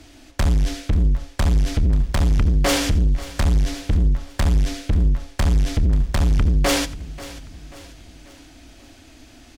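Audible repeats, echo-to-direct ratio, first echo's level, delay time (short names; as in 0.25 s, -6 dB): 4, -14.0 dB, -18.0 dB, 86 ms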